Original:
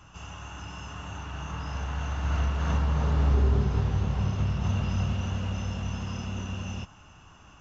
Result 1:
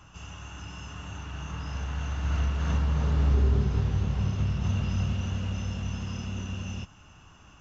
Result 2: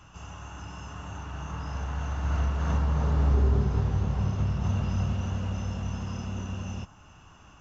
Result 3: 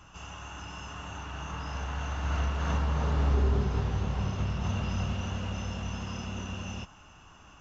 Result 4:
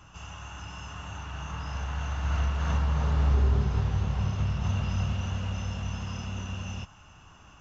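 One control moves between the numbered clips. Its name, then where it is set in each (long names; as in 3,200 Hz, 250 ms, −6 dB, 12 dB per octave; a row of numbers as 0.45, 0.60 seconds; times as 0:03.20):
dynamic equaliser, frequency: 840, 3,000, 110, 310 Hertz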